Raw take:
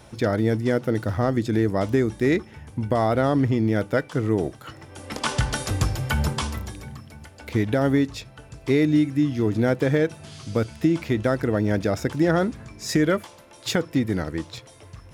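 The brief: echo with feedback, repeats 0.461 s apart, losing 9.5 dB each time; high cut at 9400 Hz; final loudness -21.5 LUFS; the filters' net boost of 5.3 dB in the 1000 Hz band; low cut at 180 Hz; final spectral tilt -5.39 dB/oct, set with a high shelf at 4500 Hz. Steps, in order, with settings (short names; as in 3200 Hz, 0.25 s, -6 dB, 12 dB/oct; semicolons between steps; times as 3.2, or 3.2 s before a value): HPF 180 Hz; LPF 9400 Hz; bell 1000 Hz +8 dB; high shelf 4500 Hz -8 dB; feedback echo 0.461 s, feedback 33%, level -9.5 dB; gain +2 dB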